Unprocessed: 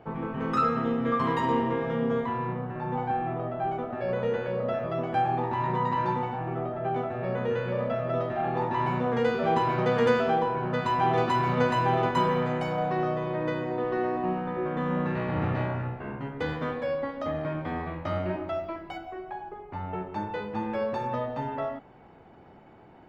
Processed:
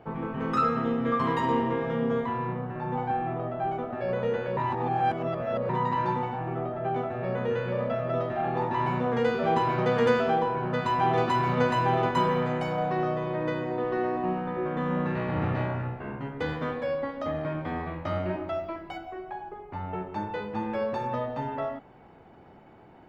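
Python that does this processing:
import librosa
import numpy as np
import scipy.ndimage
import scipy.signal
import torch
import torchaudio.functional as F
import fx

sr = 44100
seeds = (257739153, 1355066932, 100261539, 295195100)

y = fx.edit(x, sr, fx.reverse_span(start_s=4.57, length_s=1.12), tone=tone)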